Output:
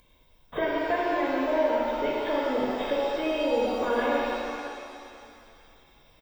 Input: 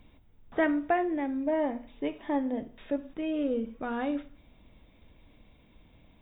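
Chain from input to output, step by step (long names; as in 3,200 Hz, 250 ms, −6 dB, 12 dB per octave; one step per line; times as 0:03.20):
bass and treble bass −7 dB, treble +12 dB
downward compressor 5 to 1, threshold −39 dBFS, peak gain reduction 15.5 dB
feedback echo with a high-pass in the loop 123 ms, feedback 79%, high-pass 230 Hz, level −14 dB
noise gate −50 dBFS, range −46 dB
comb filter 1.9 ms, depth 49%
upward compression, threshold −49 dBFS
reverb with rising layers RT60 2.4 s, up +7 semitones, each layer −8 dB, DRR −5 dB
level +9 dB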